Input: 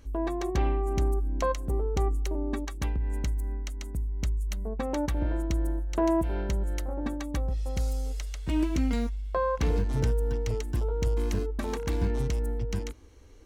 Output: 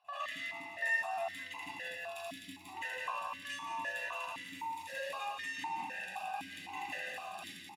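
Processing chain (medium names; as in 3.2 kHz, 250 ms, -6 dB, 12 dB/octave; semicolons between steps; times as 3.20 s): peaking EQ 860 Hz +11 dB 3 oct; in parallel at -6 dB: wavefolder -23.5 dBFS; on the sum: reverberation RT60 1.1 s, pre-delay 59 ms, DRR -10 dB; compression, threshold -14 dBFS, peak gain reduction 8 dB; comb 1.9 ms, depth 81%; level rider; speed mistake 45 rpm record played at 78 rpm; differentiator; on a send: feedback delay 174 ms, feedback 58%, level -5 dB; on the sum: stepped vowel filter 3.9 Hz; trim +3.5 dB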